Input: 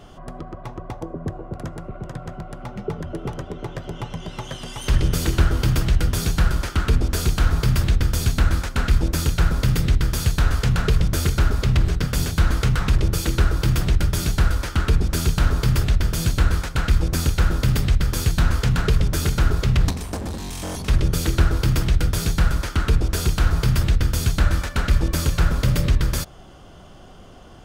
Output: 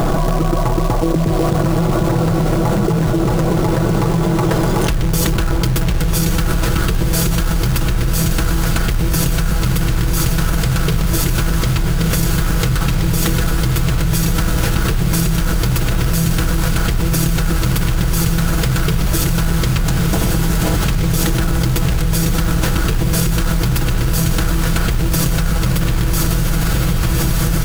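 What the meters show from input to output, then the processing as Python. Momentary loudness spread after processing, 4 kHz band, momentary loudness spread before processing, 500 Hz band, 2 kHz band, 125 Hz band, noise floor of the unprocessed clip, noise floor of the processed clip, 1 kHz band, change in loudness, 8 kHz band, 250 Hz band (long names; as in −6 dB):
2 LU, +6.0 dB, 13 LU, +9.0 dB, +5.5 dB, +5.0 dB, −43 dBFS, −17 dBFS, +8.0 dB, +5.0 dB, +8.5 dB, +9.5 dB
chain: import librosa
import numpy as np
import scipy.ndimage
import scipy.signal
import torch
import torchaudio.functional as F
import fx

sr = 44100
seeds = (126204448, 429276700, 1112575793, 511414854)

p1 = fx.wiener(x, sr, points=15)
p2 = fx.high_shelf(p1, sr, hz=7100.0, db=10.5)
p3 = p2 + 0.57 * np.pad(p2, (int(6.1 * sr / 1000.0), 0))[:len(p2)]
p4 = fx.rider(p3, sr, range_db=3, speed_s=0.5)
p5 = p3 + F.gain(torch.from_numpy(p4), 1.0).numpy()
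p6 = fx.quant_float(p5, sr, bits=2)
p7 = p6 + fx.echo_diffused(p6, sr, ms=1211, feedback_pct=71, wet_db=-4.5, dry=0)
p8 = fx.env_flatten(p7, sr, amount_pct=100)
y = F.gain(torch.from_numpy(p8), -11.0).numpy()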